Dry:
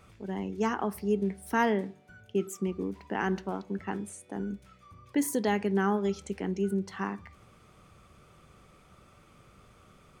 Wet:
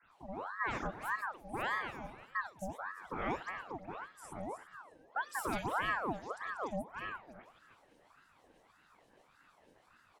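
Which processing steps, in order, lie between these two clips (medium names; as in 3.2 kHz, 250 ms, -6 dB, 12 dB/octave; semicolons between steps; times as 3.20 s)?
backward echo that repeats 172 ms, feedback 45%, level -10 dB; rotary cabinet horn 0.85 Hz, later 6.3 Hz, at 6.42 s; speakerphone echo 200 ms, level -22 dB; time-frequency box 6.71–7.36 s, 1.6–9.6 kHz -9 dB; band-stop 7.6 kHz; phase dispersion highs, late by 119 ms, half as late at 2.6 kHz; ring modulator with a swept carrier 940 Hz, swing 60%, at 1.7 Hz; trim -4.5 dB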